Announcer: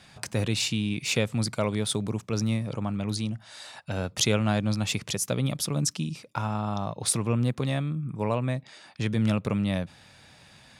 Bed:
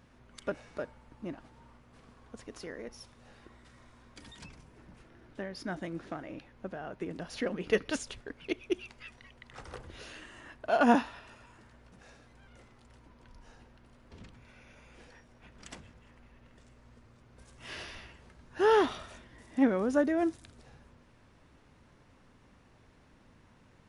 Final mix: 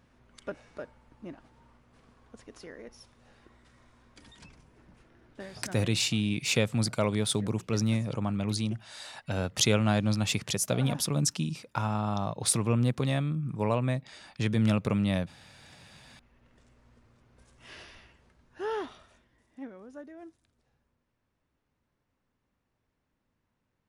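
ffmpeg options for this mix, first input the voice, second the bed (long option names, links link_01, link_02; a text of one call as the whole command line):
ffmpeg -i stem1.wav -i stem2.wav -filter_complex "[0:a]adelay=5400,volume=-0.5dB[link_01];[1:a]volume=11dB,afade=type=out:start_time=5.36:duration=0.76:silence=0.188365,afade=type=in:start_time=15.67:duration=0.92:silence=0.199526,afade=type=out:start_time=17.22:duration=2.51:silence=0.177828[link_02];[link_01][link_02]amix=inputs=2:normalize=0" out.wav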